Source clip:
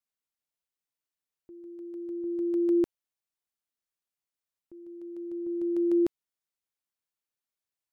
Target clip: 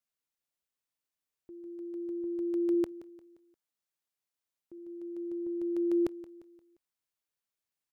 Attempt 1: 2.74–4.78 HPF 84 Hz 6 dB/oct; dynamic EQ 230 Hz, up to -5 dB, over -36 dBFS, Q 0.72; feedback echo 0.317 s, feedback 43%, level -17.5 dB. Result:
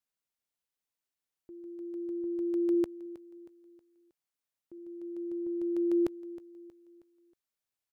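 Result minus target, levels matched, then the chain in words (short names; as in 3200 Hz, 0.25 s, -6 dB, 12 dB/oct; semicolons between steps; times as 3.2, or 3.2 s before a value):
echo 0.142 s late
2.74–4.78 HPF 84 Hz 6 dB/oct; dynamic EQ 230 Hz, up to -5 dB, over -36 dBFS, Q 0.72; feedback echo 0.175 s, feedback 43%, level -17.5 dB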